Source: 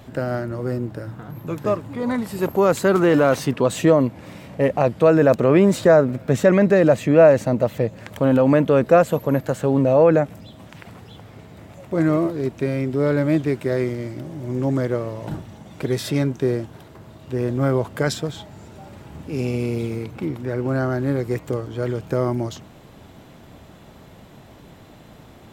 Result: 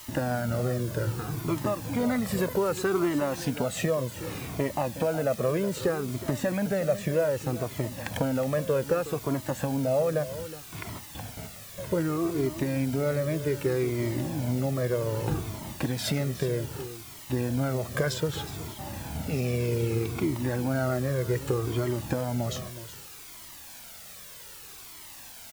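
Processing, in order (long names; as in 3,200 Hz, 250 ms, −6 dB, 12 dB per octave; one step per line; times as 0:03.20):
noise gate with hold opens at −31 dBFS
downward compressor 16 to 1, threshold −25 dBFS, peak gain reduction 18 dB
bit-depth reduction 8 bits, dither triangular
on a send: single-tap delay 368 ms −13.5 dB
on the sum: flanger whose copies keep moving one way falling 0.64 Hz
level +7 dB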